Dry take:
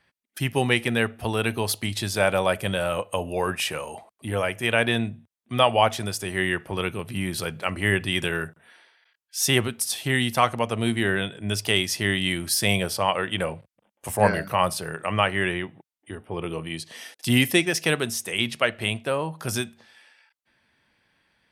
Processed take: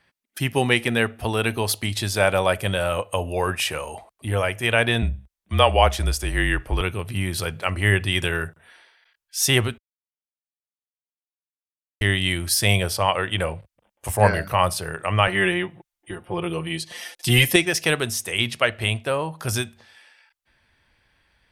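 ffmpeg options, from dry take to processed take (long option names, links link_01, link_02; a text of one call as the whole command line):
ffmpeg -i in.wav -filter_complex "[0:a]asettb=1/sr,asplit=3[link_01][link_02][link_03];[link_01]atrim=end=5.024[link_04];[link_02]atrim=start=5.02:end=6.81,asetpts=PTS-STARTPTS,afade=type=in:duration=0.004:curve=qsin,afade=type=out:start_time=1.786:duration=0.004:curve=qsin,afreqshift=-35[link_05];[link_03]atrim=start=6.806[link_06];[link_04][link_05]acrossfade=duration=0.004:curve1=hsin:curve2=qsin[link_07];[link_07][link_06]acrossfade=duration=0.004:curve1=qsin:curve2=hsin,asettb=1/sr,asplit=3[link_08][link_09][link_10];[link_08]atrim=end=15.274[link_11];[link_09]atrim=start=15.27:end=17.56,asetpts=PTS-STARTPTS,afade=type=in:duration=0.004:curve=qsin,afade=type=out:start_time=2.286:duration=0.004:curve=qsin,aecho=1:1:5.7:0.86,atrim=end_sample=100989[link_12];[link_10]atrim=start=17.556[link_13];[link_11][link_12]acrossfade=duration=0.004:curve1=hsin:curve2=qsin[link_14];[link_14][link_13]acrossfade=duration=0.004:curve1=qsin:curve2=hsin,asplit=3[link_15][link_16][link_17];[link_15]atrim=end=9.78,asetpts=PTS-STARTPTS,afade=type=out:start_time=9.776:duration=0.004:curve=hsin[link_18];[link_16]atrim=start=9.78:end=12.01,asetpts=PTS-STARTPTS,volume=0[link_19];[link_17]atrim=start=12.01,asetpts=PTS-STARTPTS,afade=type=in:duration=0.004:curve=hsin[link_20];[link_18][link_19][link_20]concat=n=3:v=0:a=1,asubboost=boost=6.5:cutoff=70,volume=2.5dB" out.wav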